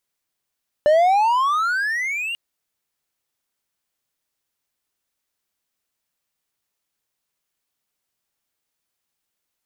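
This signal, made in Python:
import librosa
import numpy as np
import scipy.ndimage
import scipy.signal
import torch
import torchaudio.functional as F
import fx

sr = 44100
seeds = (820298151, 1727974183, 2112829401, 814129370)

y = fx.riser_tone(sr, length_s=1.49, level_db=-9.0, wave='triangle', hz=585.0, rise_st=27.5, swell_db=-13)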